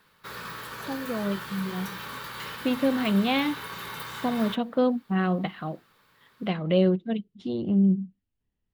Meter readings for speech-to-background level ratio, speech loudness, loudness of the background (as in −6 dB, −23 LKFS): 10.0 dB, −27.0 LKFS, −37.0 LKFS